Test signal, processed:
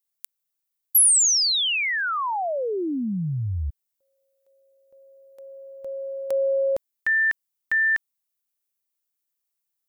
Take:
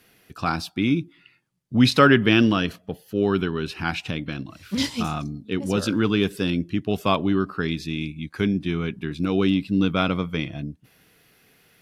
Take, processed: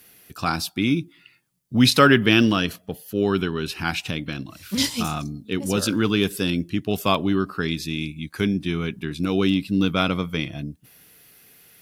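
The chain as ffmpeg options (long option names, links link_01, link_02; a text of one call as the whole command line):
ffmpeg -i in.wav -af "aemphasis=mode=production:type=50kf" out.wav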